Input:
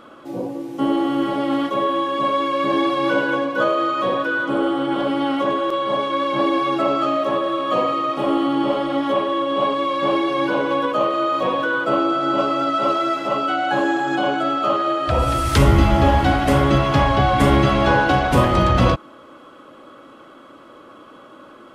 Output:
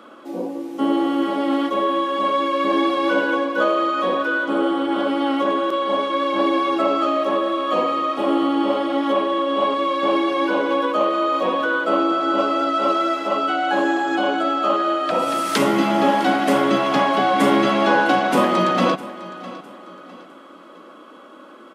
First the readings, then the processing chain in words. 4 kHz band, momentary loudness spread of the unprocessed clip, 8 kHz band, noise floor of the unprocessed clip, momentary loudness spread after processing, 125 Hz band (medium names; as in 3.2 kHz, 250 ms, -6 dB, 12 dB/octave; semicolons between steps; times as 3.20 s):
0.0 dB, 5 LU, 0.0 dB, -44 dBFS, 4 LU, -15.0 dB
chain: steep high-pass 180 Hz 48 dB/octave; feedback delay 656 ms, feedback 36%, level -17 dB